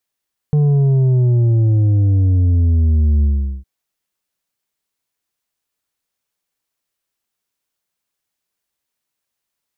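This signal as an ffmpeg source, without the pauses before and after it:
ffmpeg -f lavfi -i "aevalsrc='0.282*clip((3.11-t)/0.41,0,1)*tanh(2*sin(2*PI*150*3.11/log(65/150)*(exp(log(65/150)*t/3.11)-1)))/tanh(2)':duration=3.11:sample_rate=44100" out.wav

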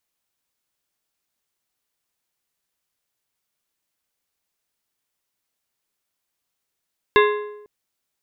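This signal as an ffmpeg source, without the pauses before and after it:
ffmpeg -f lavfi -i "aevalsrc='0.282*pow(10,-3*t/0.91)*sin(2*PI*418*t)+0.2*pow(10,-3*t/0.691)*sin(2*PI*1045*t)+0.141*pow(10,-3*t/0.6)*sin(2*PI*1672*t)+0.1*pow(10,-3*t/0.562)*sin(2*PI*2090*t)+0.0708*pow(10,-3*t/0.519)*sin(2*PI*2717*t)+0.0501*pow(10,-3*t/0.479)*sin(2*PI*3553*t)+0.0355*pow(10,-3*t/0.471)*sin(2*PI*3762*t)':duration=0.5:sample_rate=44100" out.wav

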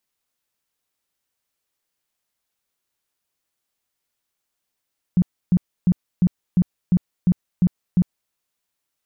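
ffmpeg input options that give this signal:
ffmpeg -f lavfi -i "aevalsrc='0.266*sin(2*PI*179*mod(t,0.35))*lt(mod(t,0.35),9/179)':duration=3.15:sample_rate=44100" out.wav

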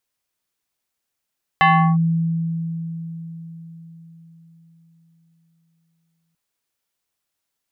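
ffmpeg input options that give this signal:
ffmpeg -f lavfi -i "aevalsrc='0.335*pow(10,-3*t/4.74)*sin(2*PI*165*t+2.1*clip(1-t/0.36,0,1)*sin(2*PI*5.76*165*t))':duration=4.74:sample_rate=44100" out.wav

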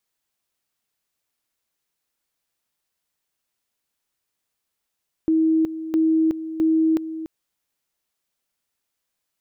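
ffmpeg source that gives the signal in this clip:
ffmpeg -f lavfi -i "aevalsrc='pow(10,(-15-12.5*gte(mod(t,0.66),0.37))/20)*sin(2*PI*320*t)':duration=1.98:sample_rate=44100" out.wav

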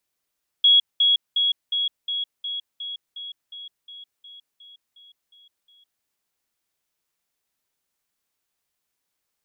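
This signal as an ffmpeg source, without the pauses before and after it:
ffmpeg -f lavfi -i "aevalsrc='pow(10,(-11.5-3*floor(t/0.36))/20)*sin(2*PI*3330*t)*clip(min(mod(t,0.36),0.16-mod(t,0.36))/0.005,0,1)':duration=5.4:sample_rate=44100" out.wav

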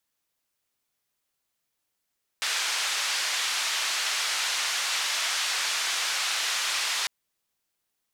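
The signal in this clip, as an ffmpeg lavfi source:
ffmpeg -f lavfi -i "anoisesrc=color=white:duration=4.65:sample_rate=44100:seed=1,highpass=frequency=1100,lowpass=frequency=5500,volume=-16.4dB" out.wav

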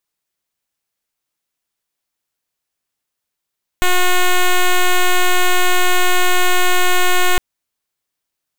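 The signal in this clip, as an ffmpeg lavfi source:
ffmpeg -f lavfi -i "aevalsrc='0.266*(2*lt(mod(362*t,1),0.07)-1)':duration=3.56:sample_rate=44100" out.wav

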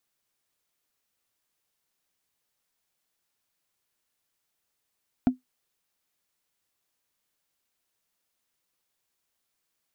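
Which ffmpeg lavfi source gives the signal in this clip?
ffmpeg -f lavfi -i "aevalsrc='0.237*pow(10,-3*t/0.14)*sin(2*PI*254*t)+0.075*pow(10,-3*t/0.041)*sin(2*PI*700.3*t)+0.0237*pow(10,-3*t/0.018)*sin(2*PI*1372.6*t)+0.0075*pow(10,-3*t/0.01)*sin(2*PI*2269*t)+0.00237*pow(10,-3*t/0.006)*sin(2*PI*3388.4*t)':duration=0.45:sample_rate=44100" out.wav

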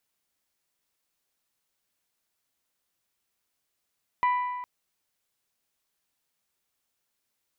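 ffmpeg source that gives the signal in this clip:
ffmpeg -f lavfi -i "aevalsrc='0.106*pow(10,-3*t/1.59)*sin(2*PI*990*t)+0.0335*pow(10,-3*t/1.291)*sin(2*PI*1980*t)+0.0106*pow(10,-3*t/1.223)*sin(2*PI*2376*t)+0.00335*pow(10,-3*t/1.144)*sin(2*PI*2970*t)+0.00106*pow(10,-3*t/1.049)*sin(2*PI*3960*t)':duration=0.41:sample_rate=44100" out.wav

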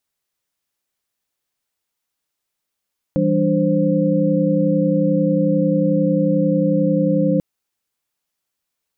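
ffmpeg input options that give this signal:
ffmpeg -f lavfi -i "aevalsrc='0.106*(sin(2*PI*164.81*t)+sin(2*PI*196*t)+sin(2*PI*293.66*t)+sin(2*PI*523.25*t))':duration=4.24:sample_rate=44100" out.wav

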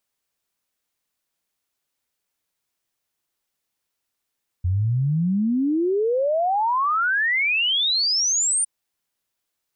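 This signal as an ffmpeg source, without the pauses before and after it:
ffmpeg -f lavfi -i "aevalsrc='0.126*clip(min(t,4.01-t)/0.01,0,1)*sin(2*PI*86*4.01/log(9300/86)*(exp(log(9300/86)*t/4.01)-1))':duration=4.01:sample_rate=44100" out.wav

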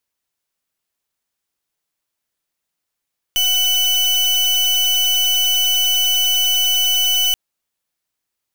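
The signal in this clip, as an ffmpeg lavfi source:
ffmpeg -f lavfi -i "aevalsrc='0.158*(2*lt(mod(2990*t,1),0.37)-1)':duration=3.98:sample_rate=44100" out.wav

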